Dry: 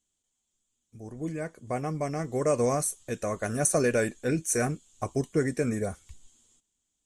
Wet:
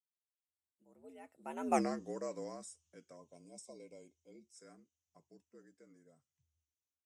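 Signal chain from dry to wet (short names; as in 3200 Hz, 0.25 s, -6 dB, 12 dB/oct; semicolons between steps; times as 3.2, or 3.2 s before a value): Doppler pass-by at 1.77, 50 m/s, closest 2.5 m; spectral gain 3.16–4.54, 1000–2000 Hz -24 dB; frequency shift +74 Hz; gain +2 dB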